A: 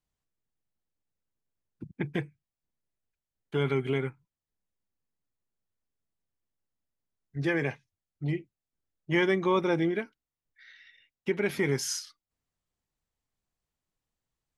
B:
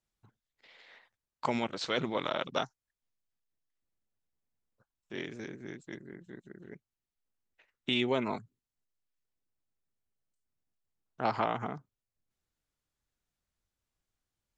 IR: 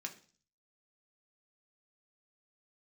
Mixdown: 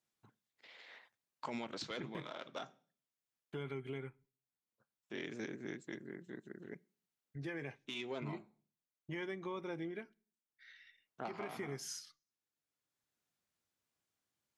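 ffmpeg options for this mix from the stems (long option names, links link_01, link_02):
-filter_complex "[0:a]agate=range=-33dB:threshold=-53dB:ratio=3:detection=peak,acompressor=threshold=-42dB:ratio=2,volume=-6.5dB,asplit=3[link_01][link_02][link_03];[link_02]volume=-13dB[link_04];[1:a]asoftclip=type=tanh:threshold=-21dB,highpass=140,volume=-1dB,asplit=2[link_05][link_06];[link_06]volume=-13.5dB[link_07];[link_03]apad=whole_len=642874[link_08];[link_05][link_08]sidechaincompress=threshold=-59dB:ratio=8:attack=31:release=978[link_09];[2:a]atrim=start_sample=2205[link_10];[link_04][link_07]amix=inputs=2:normalize=0[link_11];[link_11][link_10]afir=irnorm=-1:irlink=0[link_12];[link_01][link_09][link_12]amix=inputs=3:normalize=0,alimiter=level_in=8dB:limit=-24dB:level=0:latency=1:release=87,volume=-8dB"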